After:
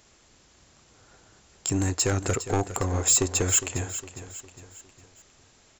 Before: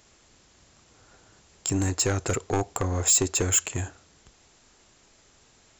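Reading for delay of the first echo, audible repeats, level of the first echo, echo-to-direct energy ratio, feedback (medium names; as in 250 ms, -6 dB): 408 ms, 4, -12.5 dB, -11.5 dB, 45%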